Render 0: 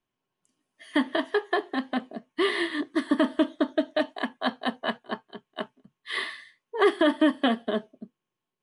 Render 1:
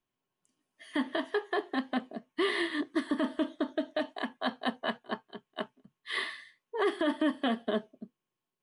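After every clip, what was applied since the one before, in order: limiter -16.5 dBFS, peak gain reduction 6.5 dB; gain -3 dB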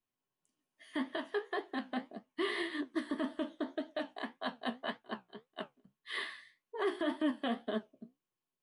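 flange 1.8 Hz, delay 8.9 ms, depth 8.6 ms, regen +56%; gain -1.5 dB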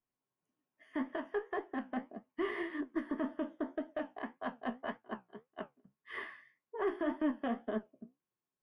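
added harmonics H 2 -21 dB, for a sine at -23 dBFS; running mean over 11 samples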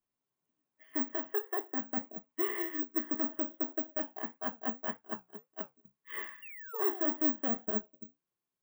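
painted sound fall, 6.42–7.08, 560–2900 Hz -50 dBFS; careless resampling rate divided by 2×, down filtered, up zero stuff

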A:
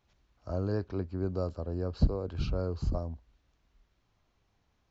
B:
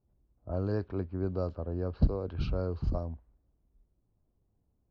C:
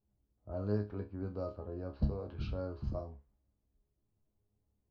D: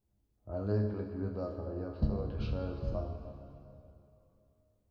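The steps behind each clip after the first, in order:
LPF 4800 Hz 12 dB/oct; low-pass opened by the level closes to 430 Hz, open at -25 dBFS
resonator bank C#2 fifth, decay 0.25 s; gain +3.5 dB
plate-style reverb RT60 2.9 s, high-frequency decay 0.8×, DRR 4.5 dB; gain +1.5 dB

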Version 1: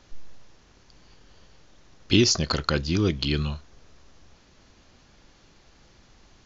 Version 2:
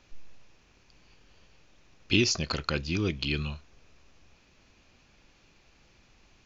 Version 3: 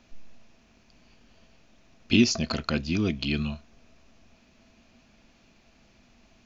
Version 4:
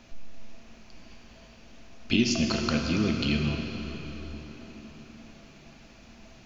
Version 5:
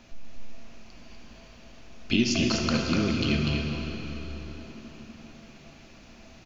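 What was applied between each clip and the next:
bell 2500 Hz +9.5 dB 0.32 oct; gain -6 dB
small resonant body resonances 230/660 Hz, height 12 dB, ringing for 70 ms
compressor 1.5:1, threshold -43 dBFS, peak gain reduction 10.5 dB; plate-style reverb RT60 4.9 s, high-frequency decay 0.75×, DRR 1.5 dB; gain +5.5 dB
echo 0.245 s -4.5 dB

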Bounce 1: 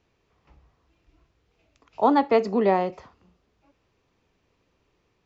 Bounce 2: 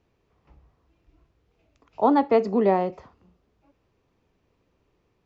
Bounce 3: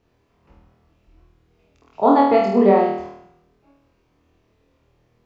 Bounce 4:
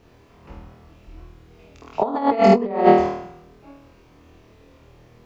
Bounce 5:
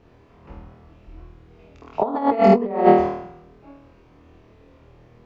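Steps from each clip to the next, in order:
tilt shelf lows +3.5 dB, about 1200 Hz; gain -2 dB
flutter echo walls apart 4.3 m, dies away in 0.75 s; gain +2 dB
negative-ratio compressor -21 dBFS, ratio -0.5; gain +5.5 dB
LPF 2300 Hz 6 dB/oct

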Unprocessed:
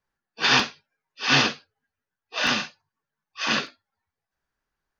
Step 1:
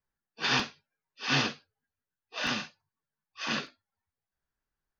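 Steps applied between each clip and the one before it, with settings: low shelf 230 Hz +6 dB; gain -8.5 dB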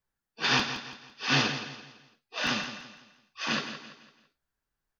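feedback echo 0.168 s, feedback 38%, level -10.5 dB; gain +2 dB

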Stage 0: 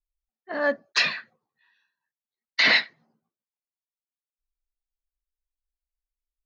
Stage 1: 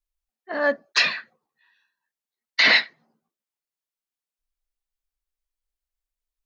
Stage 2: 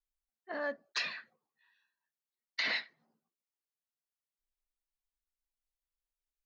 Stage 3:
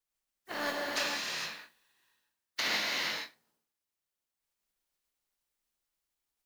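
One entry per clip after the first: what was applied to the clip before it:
bell 97 Hz -8 dB 1.5 oct; gain +2.5 dB
compressor 2:1, threshold -29 dBFS, peak gain reduction 9 dB; gain -8.5 dB
spectral contrast lowered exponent 0.44; non-linear reverb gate 0.49 s flat, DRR -3 dB

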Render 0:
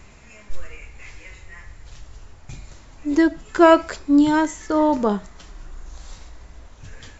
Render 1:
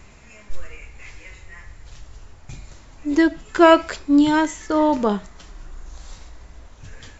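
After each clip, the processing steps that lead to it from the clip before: dynamic EQ 2900 Hz, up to +5 dB, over -41 dBFS, Q 1.1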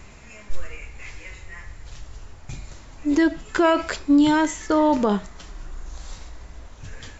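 limiter -12 dBFS, peak gain reduction 10.5 dB; gain +2 dB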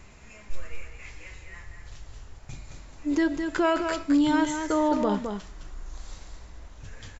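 echo 0.212 s -6.5 dB; gain -5.5 dB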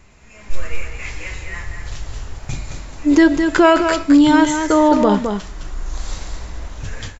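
AGC gain up to 15 dB

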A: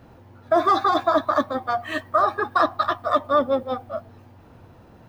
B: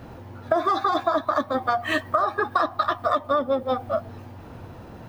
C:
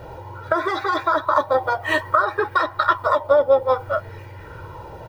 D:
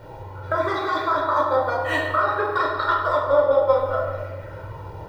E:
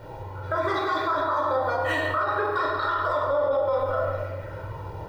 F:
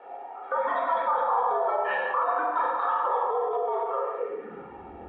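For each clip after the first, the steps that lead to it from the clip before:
compressor 6:1, threshold -27 dBFS, peak gain reduction 12.5 dB; gain +7.5 dB
comb 2.1 ms, depth 86%; LFO bell 0.59 Hz 690–2100 Hz +10 dB
reverb RT60 1.7 s, pre-delay 7 ms, DRR -2.5 dB; gain -6 dB
limiter -16.5 dBFS, peak gain reduction 11 dB
mistuned SSB -110 Hz 160–3000 Hz; high-pass sweep 680 Hz -> 68 Hz, 4.14–4.84; gain -3.5 dB

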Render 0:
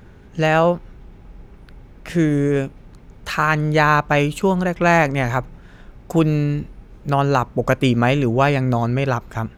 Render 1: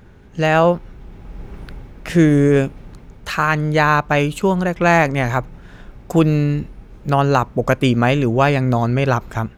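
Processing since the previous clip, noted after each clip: AGC gain up to 12 dB; gain -1 dB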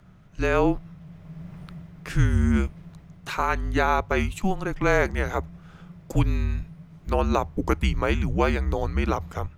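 notches 60/120/180/240/300 Hz; frequency shift -200 Hz; gain -7 dB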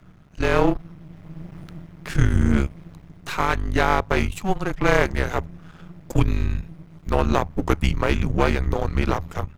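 half-wave gain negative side -12 dB; gain +5.5 dB

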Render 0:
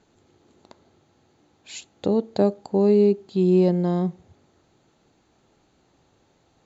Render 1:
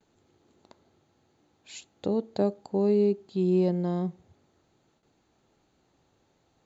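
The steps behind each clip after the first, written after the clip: gate with hold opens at -54 dBFS; gain -6 dB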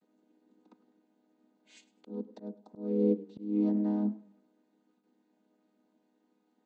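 chord vocoder minor triad, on G#3; auto swell 0.381 s; warbling echo 0.102 s, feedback 31%, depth 83 cents, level -19 dB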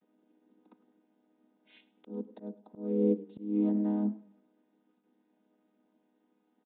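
downsampling 8000 Hz

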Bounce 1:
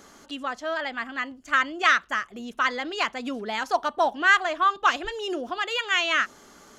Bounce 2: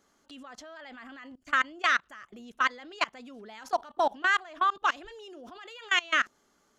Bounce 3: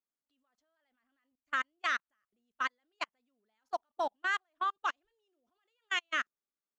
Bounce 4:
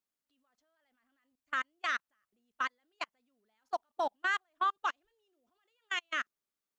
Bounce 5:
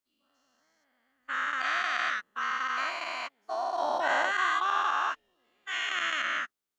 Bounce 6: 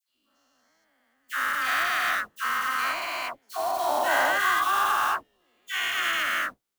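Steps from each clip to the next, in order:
level quantiser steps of 23 dB
upward expander 2.5:1, over -41 dBFS; gain -6 dB
limiter -25 dBFS, peak gain reduction 6 dB; gain +2.5 dB
spectral dilation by 0.48 s; gain -4 dB
modulation noise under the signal 15 dB; dispersion lows, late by 88 ms, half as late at 1300 Hz; gain +4 dB

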